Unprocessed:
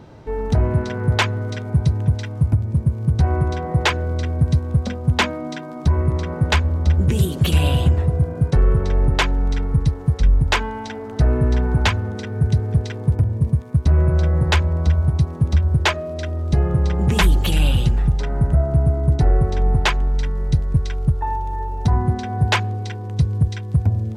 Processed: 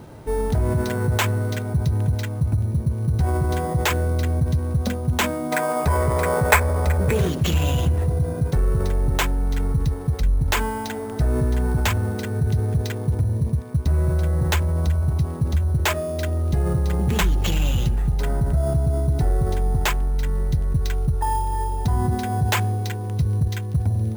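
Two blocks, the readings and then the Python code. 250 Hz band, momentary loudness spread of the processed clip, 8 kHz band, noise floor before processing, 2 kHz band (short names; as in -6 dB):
-2.5 dB, 4 LU, +2.5 dB, -31 dBFS, -1.5 dB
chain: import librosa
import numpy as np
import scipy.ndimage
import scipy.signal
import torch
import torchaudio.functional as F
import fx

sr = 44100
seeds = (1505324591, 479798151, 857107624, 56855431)

p1 = fx.spec_box(x, sr, start_s=5.52, length_s=1.75, low_hz=390.0, high_hz=2600.0, gain_db=12)
p2 = fx.over_compress(p1, sr, threshold_db=-22.0, ratio=-1.0)
p3 = p1 + (p2 * librosa.db_to_amplitude(-1.5))
p4 = fx.sample_hold(p3, sr, seeds[0], rate_hz=10000.0, jitter_pct=0)
y = p4 * librosa.db_to_amplitude(-6.0)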